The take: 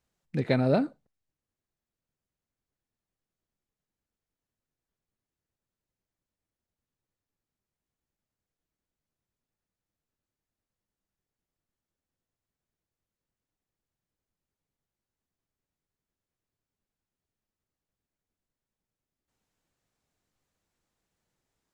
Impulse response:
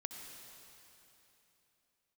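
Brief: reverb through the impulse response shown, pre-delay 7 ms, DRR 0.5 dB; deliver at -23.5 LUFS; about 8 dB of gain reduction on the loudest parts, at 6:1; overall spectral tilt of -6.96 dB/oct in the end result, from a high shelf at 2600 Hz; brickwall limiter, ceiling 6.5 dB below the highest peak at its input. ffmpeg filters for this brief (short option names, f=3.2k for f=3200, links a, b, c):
-filter_complex "[0:a]highshelf=f=2.6k:g=5,acompressor=threshold=-27dB:ratio=6,alimiter=limit=-22.5dB:level=0:latency=1,asplit=2[a][b];[1:a]atrim=start_sample=2205,adelay=7[c];[b][c]afir=irnorm=-1:irlink=0,volume=1.5dB[d];[a][d]amix=inputs=2:normalize=0,volume=10.5dB"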